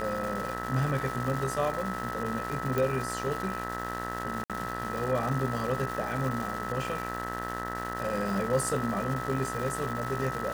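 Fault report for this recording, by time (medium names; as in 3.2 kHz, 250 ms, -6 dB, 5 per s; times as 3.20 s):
buzz 60 Hz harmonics 33 -37 dBFS
crackle 570 per s -34 dBFS
whine 1.3 kHz -36 dBFS
2.78 s: pop
4.44–4.50 s: dropout 57 ms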